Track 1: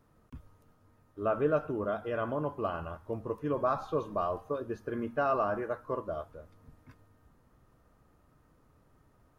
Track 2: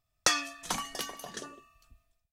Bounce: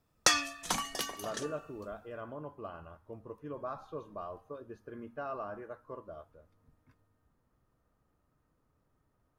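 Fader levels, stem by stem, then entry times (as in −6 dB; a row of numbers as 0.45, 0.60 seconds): −10.5, +0.5 decibels; 0.00, 0.00 seconds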